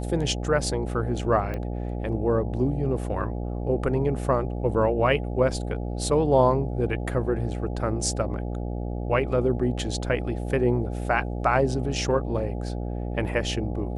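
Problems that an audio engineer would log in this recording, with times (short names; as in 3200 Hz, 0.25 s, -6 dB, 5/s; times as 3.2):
buzz 60 Hz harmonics 14 -30 dBFS
1.54 pop -20 dBFS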